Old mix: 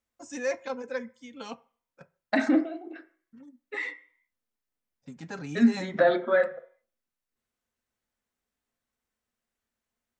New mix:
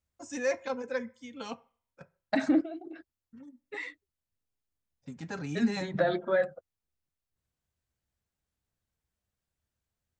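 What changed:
second voice: send off; master: add bell 76 Hz +10.5 dB 0.89 oct

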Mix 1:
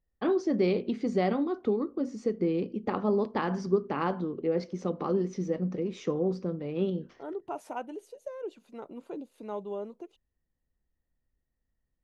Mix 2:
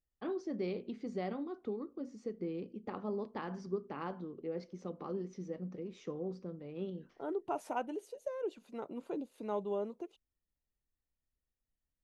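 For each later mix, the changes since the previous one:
first voice -11.5 dB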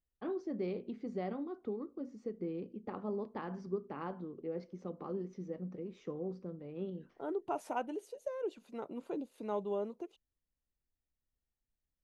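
first voice: add high shelf 2900 Hz -9 dB

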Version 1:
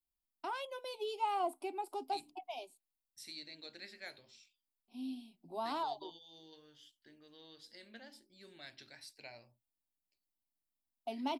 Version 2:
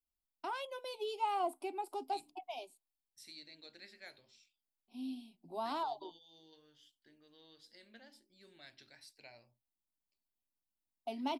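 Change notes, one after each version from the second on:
second voice -4.5 dB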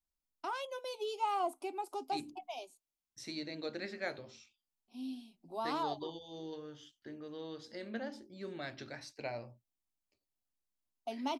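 second voice: remove pre-emphasis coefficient 0.9; master: add thirty-one-band EQ 500 Hz +3 dB, 1250 Hz +5 dB, 6300 Hz +11 dB

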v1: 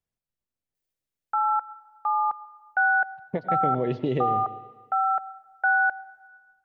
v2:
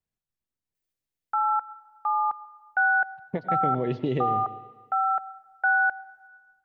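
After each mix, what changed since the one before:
master: add bell 570 Hz -3 dB 0.82 oct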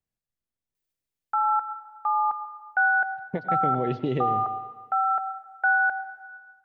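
background: send +8.5 dB

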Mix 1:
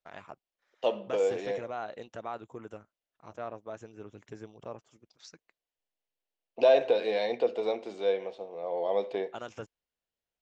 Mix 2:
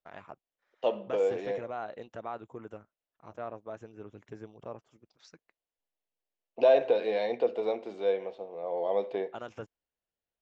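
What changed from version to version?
master: add high shelf 4300 Hz -11.5 dB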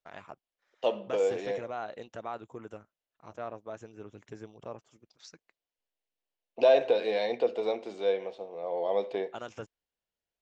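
master: add high shelf 4300 Hz +11.5 dB

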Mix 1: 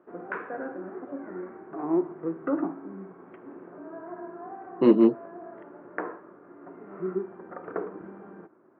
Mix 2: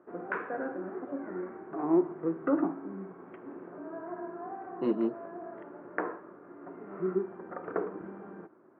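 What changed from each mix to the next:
speech -11.0 dB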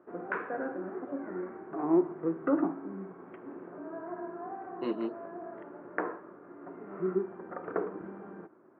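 speech: add tilt +3 dB/oct

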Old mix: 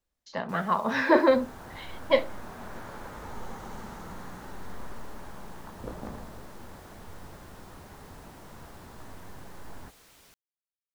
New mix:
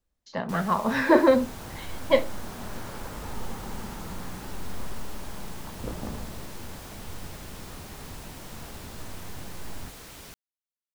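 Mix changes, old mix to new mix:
first sound +11.0 dB; master: add low shelf 330 Hz +6.5 dB

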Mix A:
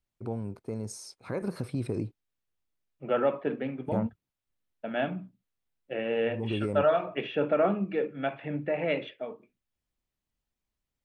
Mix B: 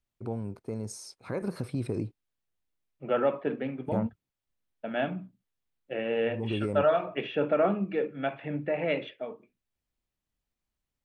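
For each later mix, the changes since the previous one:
none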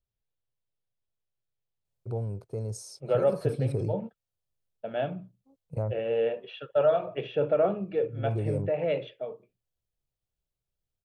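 first voice: entry +1.85 s; master: add ten-band EQ 125 Hz +8 dB, 250 Hz -11 dB, 500 Hz +6 dB, 1000 Hz -4 dB, 2000 Hz -8 dB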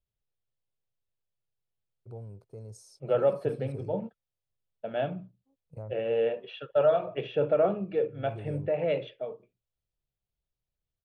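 first voice -10.5 dB

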